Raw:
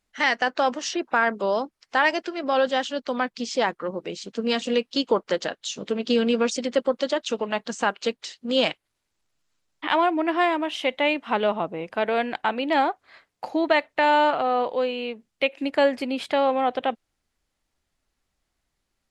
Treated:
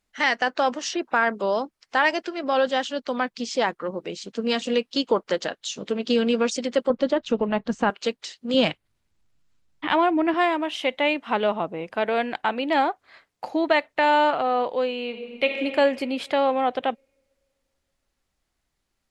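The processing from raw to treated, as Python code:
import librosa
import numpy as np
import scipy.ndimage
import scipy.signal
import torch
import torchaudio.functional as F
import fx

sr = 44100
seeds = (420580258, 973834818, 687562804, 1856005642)

y = fx.riaa(x, sr, side='playback', at=(6.9, 7.9))
y = fx.bass_treble(y, sr, bass_db=11, treble_db=-3, at=(8.54, 10.34))
y = fx.reverb_throw(y, sr, start_s=15.05, length_s=0.53, rt60_s=2.5, drr_db=2.5)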